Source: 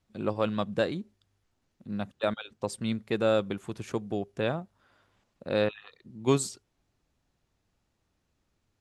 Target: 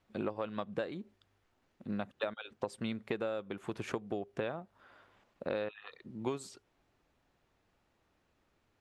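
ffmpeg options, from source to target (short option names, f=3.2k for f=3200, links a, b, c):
-af "bass=f=250:g=-8,treble=f=4k:g=-14,acompressor=threshold=-38dB:ratio=16,highshelf=f=5.7k:g=5.5,volume=5.5dB"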